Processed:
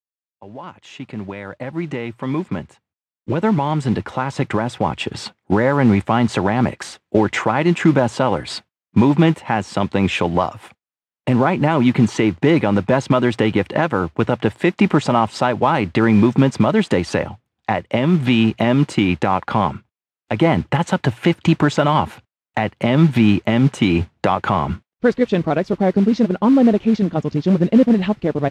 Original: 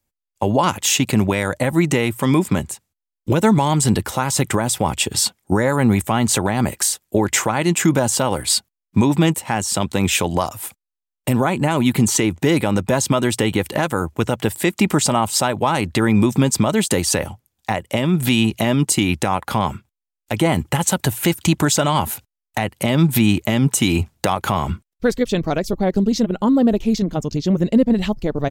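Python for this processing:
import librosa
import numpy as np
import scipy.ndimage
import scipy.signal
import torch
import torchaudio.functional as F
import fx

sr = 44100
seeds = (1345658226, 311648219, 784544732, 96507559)

y = fx.fade_in_head(x, sr, length_s=5.99)
y = fx.mod_noise(y, sr, seeds[0], snr_db=19)
y = fx.bandpass_edges(y, sr, low_hz=100.0, high_hz=2500.0)
y = y * 10.0 ** (2.5 / 20.0)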